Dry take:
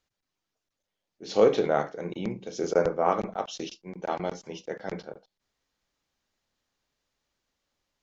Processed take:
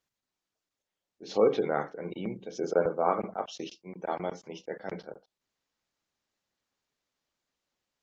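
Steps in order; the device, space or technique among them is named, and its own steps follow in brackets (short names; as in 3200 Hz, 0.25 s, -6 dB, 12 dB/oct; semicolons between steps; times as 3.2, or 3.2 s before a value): 1.25–2.34 dynamic EQ 630 Hz, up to -6 dB, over -38 dBFS, Q 4.2; noise-suppressed video call (HPF 120 Hz 6 dB/oct; spectral gate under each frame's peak -30 dB strong; gain -2 dB; Opus 24 kbps 48000 Hz)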